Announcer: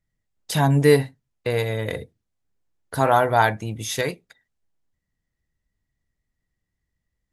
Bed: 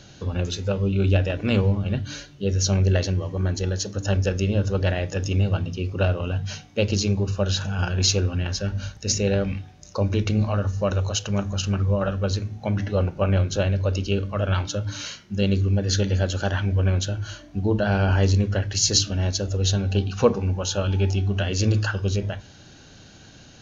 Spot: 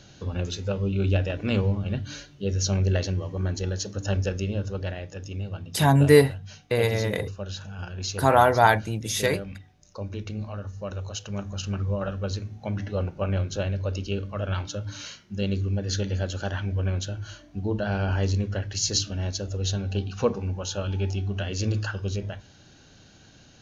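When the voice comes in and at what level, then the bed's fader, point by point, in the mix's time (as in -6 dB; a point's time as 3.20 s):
5.25 s, 0.0 dB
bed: 4.19 s -3.5 dB
5.19 s -11.5 dB
10.75 s -11.5 dB
11.76 s -5.5 dB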